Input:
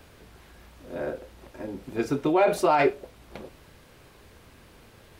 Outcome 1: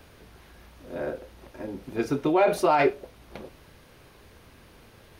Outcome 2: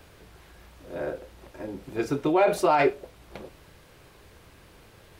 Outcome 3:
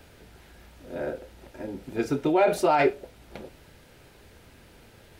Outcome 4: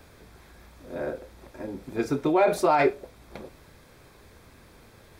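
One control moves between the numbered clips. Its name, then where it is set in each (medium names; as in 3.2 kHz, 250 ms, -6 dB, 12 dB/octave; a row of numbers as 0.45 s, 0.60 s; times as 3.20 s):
band-stop, frequency: 7.6 kHz, 240 Hz, 1.1 kHz, 2.9 kHz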